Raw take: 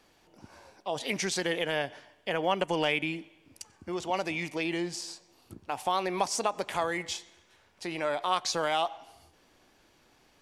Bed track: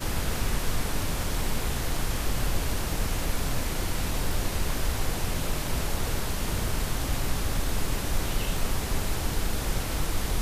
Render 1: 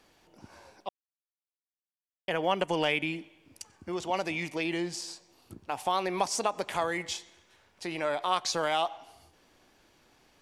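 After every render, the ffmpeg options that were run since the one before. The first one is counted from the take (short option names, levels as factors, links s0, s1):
-filter_complex "[0:a]asplit=3[s0][s1][s2];[s0]atrim=end=0.89,asetpts=PTS-STARTPTS,afade=t=out:st=0.886:d=0.004:c=hsin[s3];[s1]atrim=start=0.89:end=2.28,asetpts=PTS-STARTPTS,volume=0[s4];[s2]atrim=start=2.28,asetpts=PTS-STARTPTS,afade=t=in:d=0.004:c=hsin[s5];[s3][s4][s5]concat=n=3:v=0:a=1"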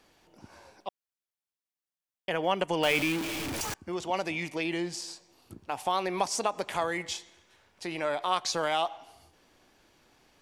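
-filter_complex "[0:a]asettb=1/sr,asplit=3[s0][s1][s2];[s0]atrim=end=2.834[s3];[s1]atrim=start=2.83:end=3.74,asetpts=PTS-STARTPTS,afade=t=in:d=0.004:c=qsin,afade=t=out:st=0.906:d=0.004:c=qsin,aeval=exprs='val(0)+0.5*0.0376*sgn(val(0))':c=same[s4];[s2]atrim=start=3.736[s5];[s3][s4]acrossfade=d=0.004:c1=hsin:c2=qsin[s6];[s6][s5]acrossfade=d=0.004:c1=qsin:c2=hsin"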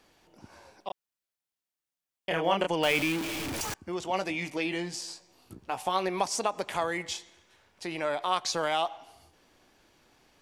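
-filter_complex "[0:a]asettb=1/sr,asplit=3[s0][s1][s2];[s0]atrim=end=0.874[s3];[s1]atrim=start=0.87:end=2.7,asetpts=PTS-STARTPTS,afade=t=in:d=0.004:c=qsin,afade=t=out:st=1.826:d=0.004:c=qsin,asplit=2[s4][s5];[s5]adelay=30,volume=0.708[s6];[s4][s6]amix=inputs=2:normalize=0,atrim=end_sample=80703[s7];[s2]atrim=start=2.696[s8];[s3][s7]acrossfade=d=0.004:c1=hsin:c2=qsin[s9];[s9][s8]acrossfade=d=0.004:c1=qsin:c2=hsin,asettb=1/sr,asplit=3[s10][s11][s12];[s10]atrim=end=4.034[s13];[s11]atrim=start=4.03:end=6.09,asetpts=PTS-STARTPTS,afade=t=in:d=0.004:c=qsin,afade=t=out:st=2.056:d=0.004:c=qsin,asplit=2[s14][s15];[s15]adelay=16,volume=0.376[s16];[s14][s16]amix=inputs=2:normalize=0,atrim=end_sample=90846[s17];[s12]atrim=start=6.086[s18];[s13][s17]acrossfade=d=0.004:c1=hsin:c2=qsin[s19];[s19][s18]acrossfade=d=0.004:c1=qsin:c2=hsin"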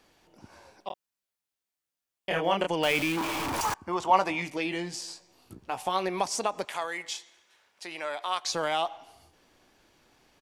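-filter_complex "[0:a]asplit=3[s0][s1][s2];[s0]afade=t=out:st=0.91:d=0.02[s3];[s1]asplit=2[s4][s5];[s5]adelay=20,volume=0.562[s6];[s4][s6]amix=inputs=2:normalize=0,afade=t=in:st=0.91:d=0.02,afade=t=out:st=2.39:d=0.02[s7];[s2]afade=t=in:st=2.39:d=0.02[s8];[s3][s7][s8]amix=inputs=3:normalize=0,asettb=1/sr,asplit=3[s9][s10][s11];[s9]atrim=end=3.174[s12];[s10]atrim=start=3.17:end=4.42,asetpts=PTS-STARTPTS,afade=t=in:d=0.004:c=qsin,afade=t=out:st=1.246:d=0.004:c=qsin,equalizer=f=1000:w=1.5:g=14[s13];[s11]atrim=start=4.416[s14];[s12][s13]acrossfade=d=0.004:c1=hsin:c2=qsin[s15];[s15][s14]acrossfade=d=0.004:c1=qsin:c2=hsin,asettb=1/sr,asplit=3[s16][s17][s18];[s16]atrim=end=6.654[s19];[s17]atrim=start=6.65:end=8.47,asetpts=PTS-STARTPTS,afade=t=in:d=0.004:c=qsin,afade=t=out:st=1.816:d=0.004:c=qsin,highpass=f=860:p=1[s20];[s18]atrim=start=8.466[s21];[s19][s20]acrossfade=d=0.004:c1=hsin:c2=qsin[s22];[s22][s21]acrossfade=d=0.004:c1=qsin:c2=hsin"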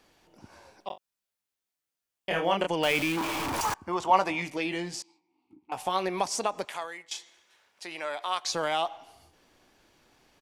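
-filter_complex "[0:a]asettb=1/sr,asplit=3[s0][s1][s2];[s0]atrim=end=0.904[s3];[s1]atrim=start=0.9:end=2.46,asetpts=PTS-STARTPTS,afade=t=in:d=0.004:c=qsin,afade=t=out:st=1.556:d=0.004:c=qsin,asplit=2[s4][s5];[s5]adelay=40,volume=0.266[s6];[s4][s6]amix=inputs=2:normalize=0,atrim=end_sample=68796[s7];[s2]atrim=start=2.456[s8];[s3][s7]acrossfade=d=0.004:c1=hsin:c2=qsin[s9];[s9][s8]acrossfade=d=0.004:c1=qsin:c2=hsin,asettb=1/sr,asplit=3[s10][s11][s12];[s10]atrim=end=5.024[s13];[s11]atrim=start=5.02:end=5.72,asetpts=PTS-STARTPTS,afade=t=in:d=0.004:c=qsin,afade=t=out:st=0.696:d=0.004:c=qsin,asplit=3[s14][s15][s16];[s14]bandpass=f=300:t=q:w=8,volume=1[s17];[s15]bandpass=f=870:t=q:w=8,volume=0.501[s18];[s16]bandpass=f=2240:t=q:w=8,volume=0.355[s19];[s17][s18][s19]amix=inputs=3:normalize=0[s20];[s12]atrim=start=5.716[s21];[s13][s20]acrossfade=d=0.004:c1=hsin:c2=qsin[s22];[s22][s21]acrossfade=d=0.004:c1=qsin:c2=hsin,asplit=2[s23][s24];[s23]atrim=end=7.11,asetpts=PTS-STARTPTS,afade=t=out:st=6.43:d=0.68:c=qsin:silence=0.149624[s25];[s24]atrim=start=7.11,asetpts=PTS-STARTPTS,afade=t=in:d=0.004:c=hsin:silence=0.149624[s26];[s25][s26]concat=n=2:v=0:a=1"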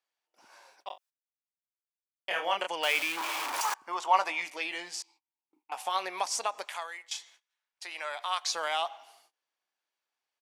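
-af "agate=range=0.0708:threshold=0.00141:ratio=16:detection=peak,highpass=790"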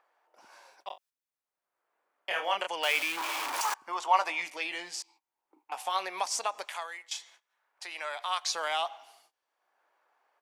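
-filter_complex "[0:a]acrossover=split=390|1600[s0][s1][s2];[s0]alimiter=level_in=15:limit=0.0631:level=0:latency=1:release=101,volume=0.0668[s3];[s1]acompressor=mode=upward:threshold=0.002:ratio=2.5[s4];[s3][s4][s2]amix=inputs=3:normalize=0"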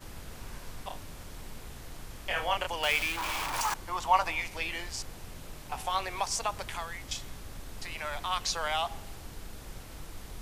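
-filter_complex "[1:a]volume=0.158[s0];[0:a][s0]amix=inputs=2:normalize=0"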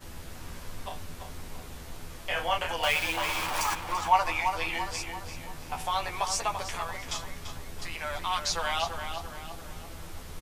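-filter_complex "[0:a]asplit=2[s0][s1];[s1]adelay=12,volume=0.631[s2];[s0][s2]amix=inputs=2:normalize=0,asplit=2[s3][s4];[s4]adelay=339,lowpass=f=4100:p=1,volume=0.447,asplit=2[s5][s6];[s6]adelay=339,lowpass=f=4100:p=1,volume=0.49,asplit=2[s7][s8];[s8]adelay=339,lowpass=f=4100:p=1,volume=0.49,asplit=2[s9][s10];[s10]adelay=339,lowpass=f=4100:p=1,volume=0.49,asplit=2[s11][s12];[s12]adelay=339,lowpass=f=4100:p=1,volume=0.49,asplit=2[s13][s14];[s14]adelay=339,lowpass=f=4100:p=1,volume=0.49[s15];[s3][s5][s7][s9][s11][s13][s15]amix=inputs=7:normalize=0"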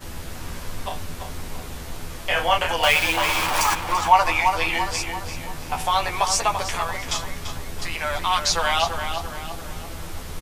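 -af "volume=2.66,alimiter=limit=0.708:level=0:latency=1"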